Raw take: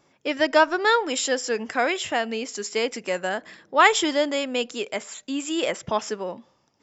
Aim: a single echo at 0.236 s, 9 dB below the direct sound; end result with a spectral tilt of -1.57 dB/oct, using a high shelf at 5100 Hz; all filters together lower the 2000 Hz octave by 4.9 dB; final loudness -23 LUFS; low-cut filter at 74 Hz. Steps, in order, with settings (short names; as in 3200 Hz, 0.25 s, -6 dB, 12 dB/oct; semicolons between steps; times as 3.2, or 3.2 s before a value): HPF 74 Hz; bell 2000 Hz -7 dB; high shelf 5100 Hz +6 dB; echo 0.236 s -9 dB; gain +1.5 dB